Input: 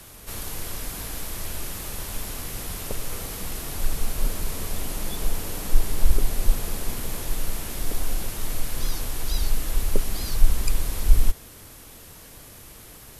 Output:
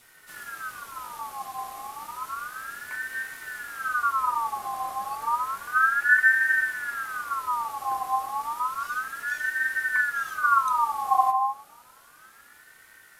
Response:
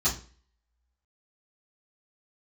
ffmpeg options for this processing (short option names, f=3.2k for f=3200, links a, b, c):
-filter_complex "[0:a]flanger=delay=8.2:depth=1.6:regen=72:speed=1:shape=triangular,afreqshift=120,asplit=2[a][b];[1:a]atrim=start_sample=2205,lowpass=f=2.3k:w=0.5412,lowpass=f=2.3k:w=1.3066,lowshelf=f=170:g=11[c];[b][c]afir=irnorm=-1:irlink=0,volume=-14.5dB[d];[a][d]amix=inputs=2:normalize=0,aeval=exprs='val(0)*sin(2*PI*1300*n/s+1300*0.3/0.31*sin(2*PI*0.31*n/s))':c=same,volume=-4dB"